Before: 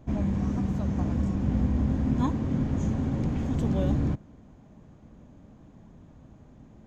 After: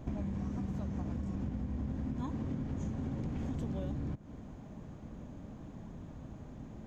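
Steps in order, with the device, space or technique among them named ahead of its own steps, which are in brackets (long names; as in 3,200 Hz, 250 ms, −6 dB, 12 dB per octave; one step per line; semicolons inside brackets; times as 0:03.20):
serial compression, peaks first (downward compressor, threshold −32 dBFS, peak gain reduction 12 dB; downward compressor 2 to 1, threshold −42 dBFS, peak gain reduction 7 dB)
level +4 dB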